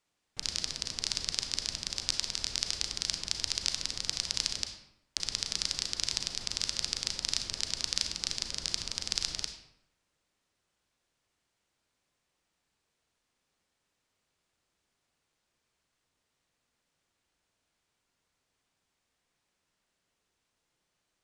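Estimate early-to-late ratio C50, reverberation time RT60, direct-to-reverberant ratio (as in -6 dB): 7.0 dB, 0.80 s, 5.5 dB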